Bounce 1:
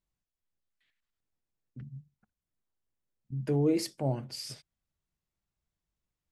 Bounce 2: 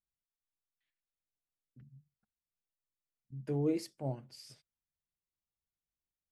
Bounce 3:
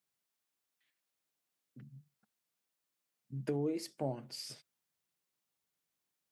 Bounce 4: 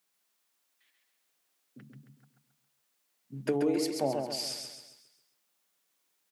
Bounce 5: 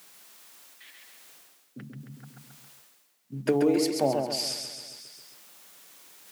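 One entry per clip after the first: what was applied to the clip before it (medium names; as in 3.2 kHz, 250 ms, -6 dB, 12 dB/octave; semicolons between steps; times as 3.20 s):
upward expansion 1.5:1, over -40 dBFS; trim -4.5 dB
high-pass 170 Hz 12 dB/octave; compression 12:1, threshold -40 dBFS, peak gain reduction 13.5 dB; trim +8.5 dB
high-pass 190 Hz 12 dB/octave; bass shelf 420 Hz -4.5 dB; on a send: feedback delay 135 ms, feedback 45%, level -4.5 dB; on the sum: trim +9 dB
block-companded coder 7-bit; reverse; upward compressor, threshold -41 dBFS; reverse; trim +5 dB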